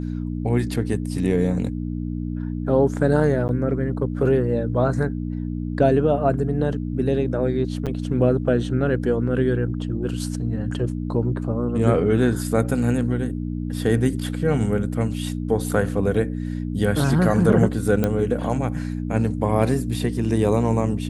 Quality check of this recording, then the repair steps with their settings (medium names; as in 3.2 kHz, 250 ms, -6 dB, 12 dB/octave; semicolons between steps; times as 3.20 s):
hum 60 Hz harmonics 5 -27 dBFS
3.48–3.49 s: dropout 9.8 ms
7.86–7.87 s: dropout 7.1 ms
18.04 s: pop -9 dBFS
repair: de-click; de-hum 60 Hz, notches 5; interpolate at 3.48 s, 9.8 ms; interpolate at 7.86 s, 7.1 ms